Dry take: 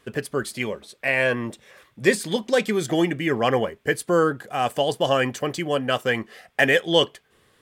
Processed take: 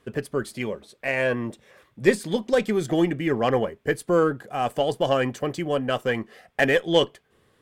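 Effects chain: added harmonics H 3 -20 dB, 6 -33 dB, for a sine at -3.5 dBFS; tilt shelf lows +3.5 dB, about 1100 Hz

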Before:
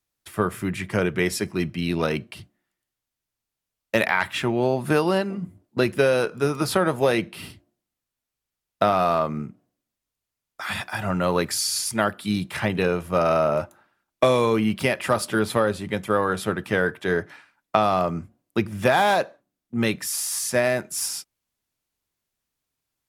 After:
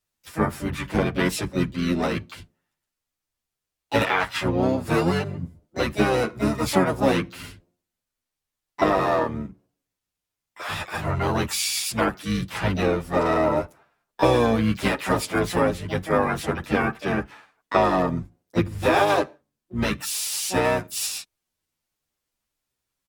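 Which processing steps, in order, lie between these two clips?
harmoniser -12 st -4 dB, -5 st -4 dB, +7 st -7 dB; endless flanger 9.5 ms -0.37 Hz

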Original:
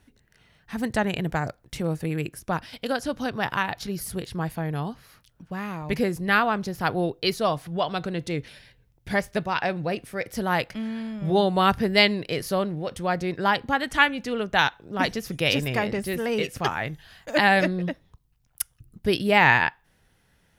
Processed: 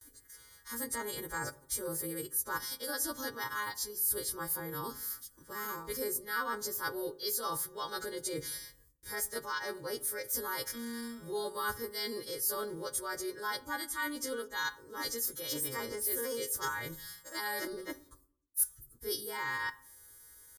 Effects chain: frequency quantiser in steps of 2 st; gate with hold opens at -51 dBFS; bell 9700 Hz +10 dB 1.5 oct; reverse; compressor 5:1, threshold -31 dBFS, peak gain reduction 23 dB; reverse; pitch shift +1 st; fixed phaser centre 700 Hz, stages 6; on a send: reverb RT60 0.65 s, pre-delay 3 ms, DRR 13.5 dB

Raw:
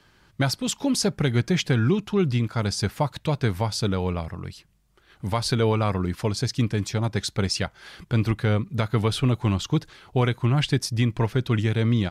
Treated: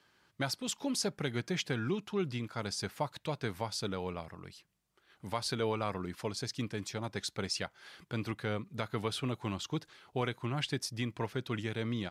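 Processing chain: HPF 280 Hz 6 dB/oct; gain -8.5 dB

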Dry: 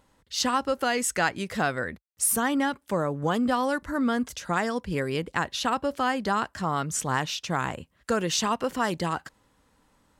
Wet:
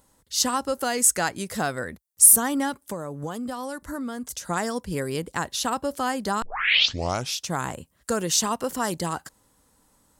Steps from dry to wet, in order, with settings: EQ curve 830 Hz 0 dB, 2600 Hz -4 dB, 9600 Hz +12 dB; 2.87–4.5 compressor, threshold -29 dBFS, peak gain reduction 9 dB; 6.42 tape start 0.97 s

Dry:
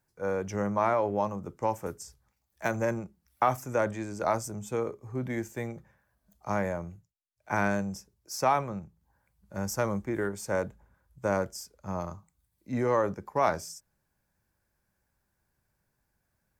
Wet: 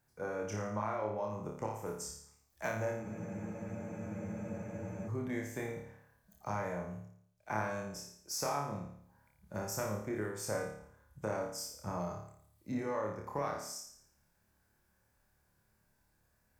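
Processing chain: compressor 5:1, threshold -37 dBFS, peak gain reduction 16 dB; flutter echo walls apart 4.8 m, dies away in 0.63 s; spectral freeze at 3.04, 2.03 s

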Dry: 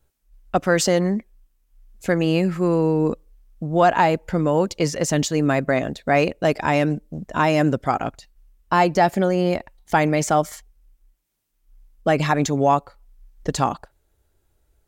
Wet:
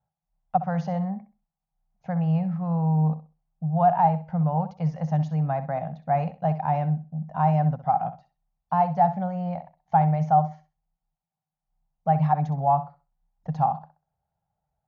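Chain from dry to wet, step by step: double band-pass 350 Hz, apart 2.3 oct; flutter echo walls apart 11 m, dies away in 0.3 s; gain +3.5 dB; AC-3 48 kbps 48000 Hz

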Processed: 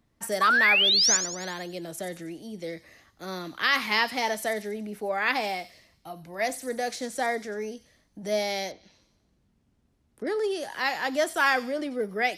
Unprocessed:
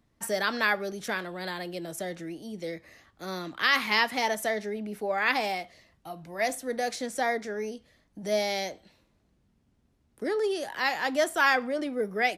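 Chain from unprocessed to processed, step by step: 0.41–1.17 painted sound rise 1100–7200 Hz -21 dBFS; thin delay 92 ms, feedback 49%, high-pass 4900 Hz, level -8.5 dB; 8.71–10.27 treble ducked by the level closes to 2400 Hz, closed at -43.5 dBFS

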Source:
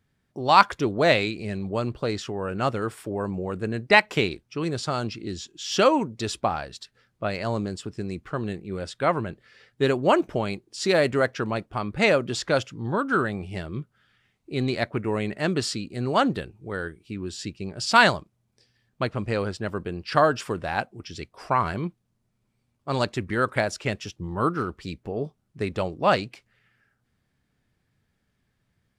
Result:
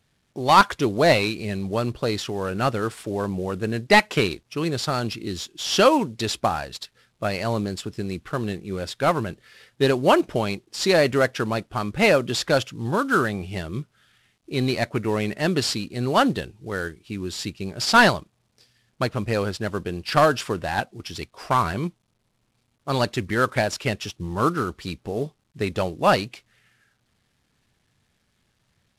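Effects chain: CVSD 64 kbps; bell 3700 Hz +4 dB 1.2 oct; gain +2.5 dB

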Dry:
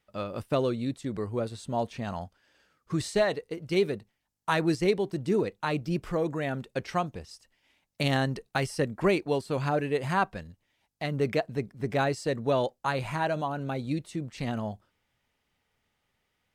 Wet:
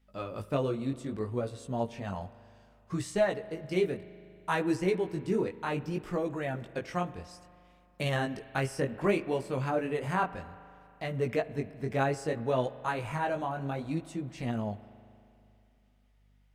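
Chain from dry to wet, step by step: dynamic EQ 4200 Hz, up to -8 dB, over -55 dBFS, Q 2.7; hum 50 Hz, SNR 34 dB; chorus 0.63 Hz, delay 15.5 ms, depth 7.2 ms; spring tank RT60 2.7 s, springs 39 ms, chirp 25 ms, DRR 15.5 dB

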